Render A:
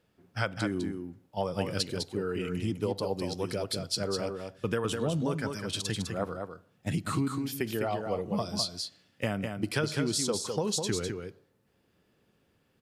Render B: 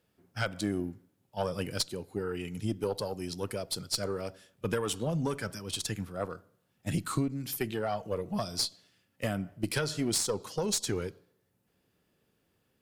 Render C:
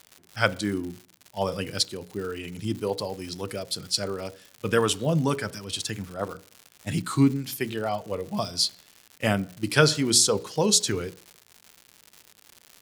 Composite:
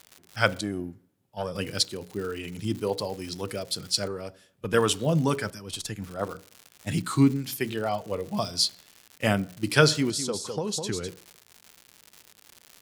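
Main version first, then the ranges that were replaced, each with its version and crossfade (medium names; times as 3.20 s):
C
0.61–1.55 s: from B
4.08–4.74 s: from B
5.50–6.02 s: from B
10.10–11.08 s: from A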